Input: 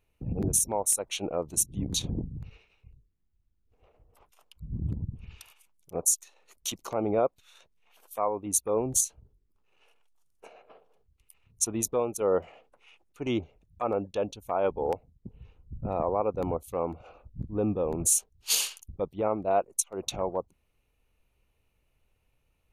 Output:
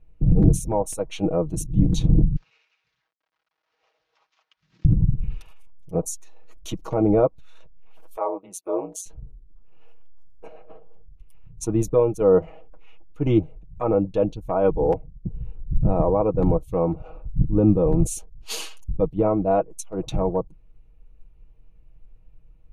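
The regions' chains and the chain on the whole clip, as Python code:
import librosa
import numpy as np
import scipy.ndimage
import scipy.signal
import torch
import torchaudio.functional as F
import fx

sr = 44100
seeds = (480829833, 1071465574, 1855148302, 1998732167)

y = fx.chain(x, sr, fx.cvsd(bps=32000),
    fx.highpass(hz=1500.0, slope=12),
    fx.band_squash(depth_pct=40), at=(2.36, 4.85))
y = fx.chain(y, sr, fx.highpass(hz=480.0, slope=24),
    fx.ring_mod(carrier_hz=92.0), at=(8.16, 9.06))
y = fx.tilt_eq(y, sr, slope=-4.0)
y = y + 0.65 * np.pad(y, (int(6.3 * sr / 1000.0), 0))[:len(y)]
y = y * librosa.db_to_amplitude(2.0)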